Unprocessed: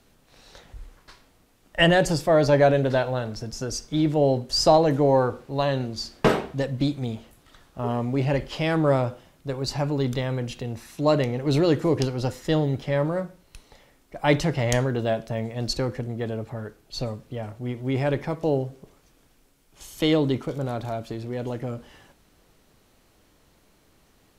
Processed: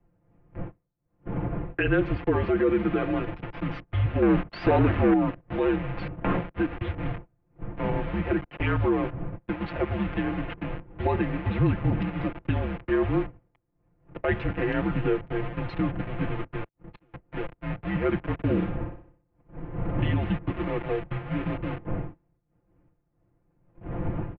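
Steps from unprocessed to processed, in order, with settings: send-on-delta sampling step -28.5 dBFS; wind noise 270 Hz -35 dBFS; gate -33 dBFS, range -22 dB; comb 5.6 ms, depth 96%; in parallel at +2 dB: compression, threshold -27 dBFS, peak gain reduction 17 dB; on the sum: peak limiter -9.5 dBFS, peak gain reduction 9.5 dB; 4.22–5.14 s: waveshaping leveller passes 2; 16.64–17.14 s: inverted gate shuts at -23 dBFS, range -34 dB; 18.33–20.10 s: flutter echo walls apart 10.5 m, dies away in 0.5 s; mistuned SSB -210 Hz 200–2900 Hz; trim -4.5 dB

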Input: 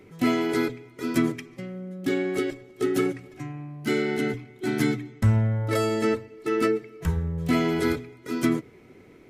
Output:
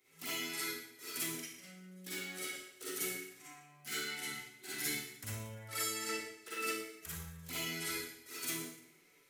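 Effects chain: touch-sensitive flanger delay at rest 8.3 ms, full sweep at -18 dBFS; pre-emphasis filter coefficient 0.97; Schroeder reverb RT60 0.7 s, DRR -8.5 dB; trim -3 dB

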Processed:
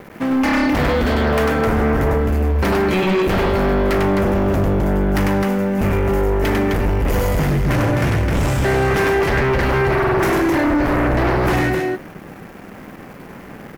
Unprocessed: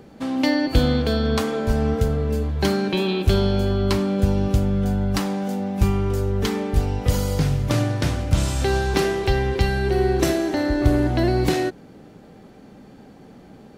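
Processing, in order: on a send at -18 dB: reverberation RT60 0.30 s, pre-delay 6 ms; on the sum: small samples zeroed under -43.5 dBFS; multi-tap echo 99/260 ms -4/-6.5 dB; in parallel at -6 dB: sine folder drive 14 dB, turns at -4.5 dBFS; on the sum: graphic EQ 2/4/8 kHz +6/-9/-7 dB; trim -6 dB

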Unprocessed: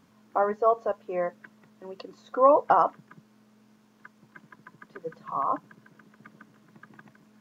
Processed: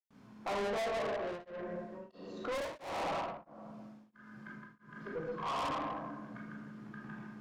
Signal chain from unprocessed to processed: reverberation RT60 1.3 s, pre-delay 106 ms; low-pass that closes with the level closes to 1 kHz, closed at -26 dBFS; treble shelf 4.3 kHz -7 dB; low-pass that closes with the level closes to 1.3 kHz, closed at -26.5 dBFS; valve stage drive 43 dB, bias 0.25; 1.12–4.97 s: tremolo of two beating tones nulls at 1.5 Hz; trim +9.5 dB

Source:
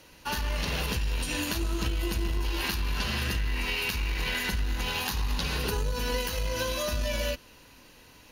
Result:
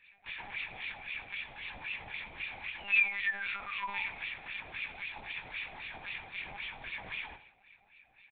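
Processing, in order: high-pass 52 Hz 12 dB/octave; bass shelf 82 Hz +7.5 dB; integer overflow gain 26.5 dB; frequency shift -230 Hz; painted sound fall, 2.79–4.03 s, 820–3000 Hz -27 dBFS; LFO band-pass sine 3.8 Hz 650–2800 Hz; doubling 19 ms -5 dB; feedback delay 90 ms, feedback 37%, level -16.5 dB; reverberation RT60 0.45 s, pre-delay 3 ms, DRR 18.5 dB; monotone LPC vocoder at 8 kHz 200 Hz; trim -9 dB

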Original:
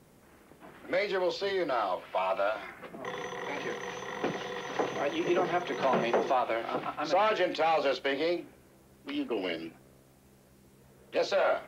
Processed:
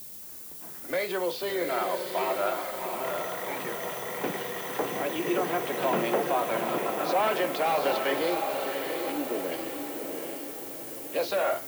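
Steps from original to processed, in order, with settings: 9.12–9.52 s: low-pass 1.1 kHz; added noise violet -43 dBFS; echo that smears into a reverb 744 ms, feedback 51%, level -4 dB

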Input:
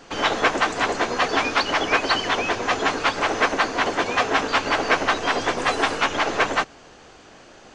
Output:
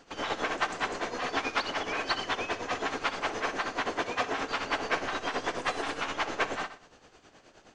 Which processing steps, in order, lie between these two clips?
flutter echo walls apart 10.6 m, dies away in 0.44 s; tremolo 9.5 Hz, depth 64%; trim -8 dB

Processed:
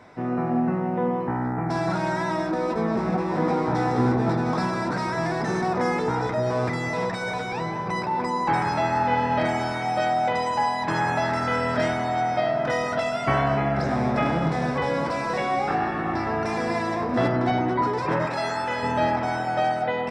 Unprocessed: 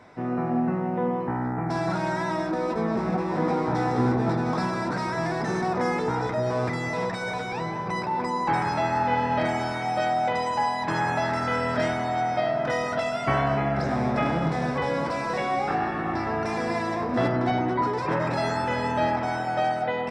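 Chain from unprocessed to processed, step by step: 18.26–18.83 s: bass shelf 350 Hz -10 dB; trim +1.5 dB

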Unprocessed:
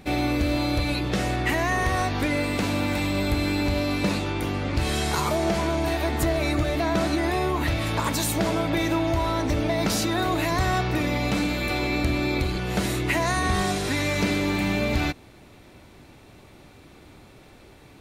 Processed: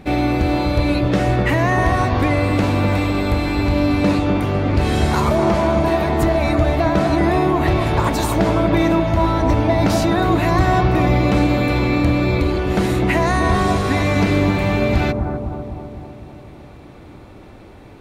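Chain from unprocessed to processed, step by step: treble shelf 3.1 kHz -10.5 dB; bucket-brigade echo 253 ms, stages 2048, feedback 61%, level -4.5 dB; trim +7 dB

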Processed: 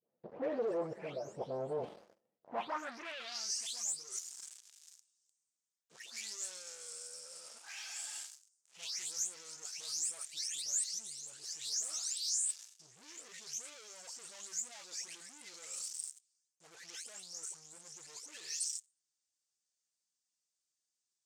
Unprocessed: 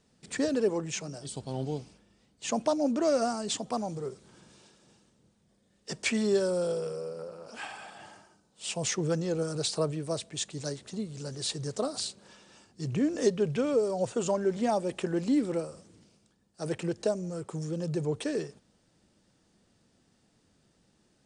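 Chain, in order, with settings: delay that grows with frequency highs late, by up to 398 ms; dynamic bell 2.1 kHz, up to +8 dB, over -59 dBFS, Q 3.1; in parallel at +0.5 dB: peak limiter -23 dBFS, peak gain reduction 10 dB; on the sum: waveshaping leveller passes 5; reverse; compression 12:1, threshold -25 dBFS, peak gain reduction 13 dB; reverse; band-pass sweep 570 Hz -> 6.9 kHz, 2.39–3.55 s; trim -4 dB

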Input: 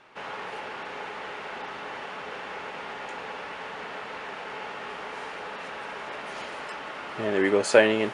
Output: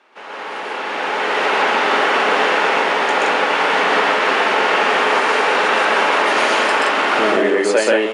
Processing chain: recorder AGC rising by 12 dB/s; high-pass 230 Hz 24 dB/octave; loudspeakers at several distances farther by 44 m 0 dB, 59 m -2 dB

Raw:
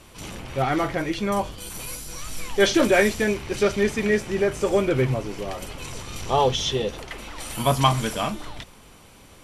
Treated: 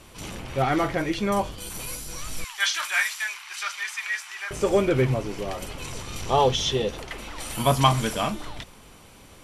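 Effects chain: 2.44–4.51 s: inverse Chebyshev high-pass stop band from 510 Hz, stop band 40 dB

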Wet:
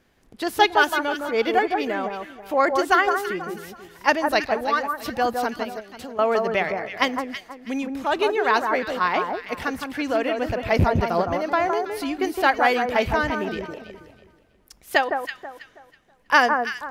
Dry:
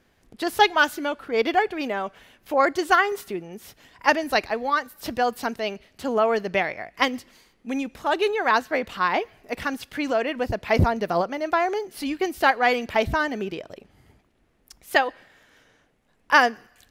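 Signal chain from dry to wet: rattle on loud lows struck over -25 dBFS, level -27 dBFS; 5.63–6.19 s: compression 6:1, threshold -35 dBFS, peak gain reduction 14.5 dB; echo whose repeats swap between lows and highs 162 ms, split 1.5 kHz, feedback 51%, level -4 dB

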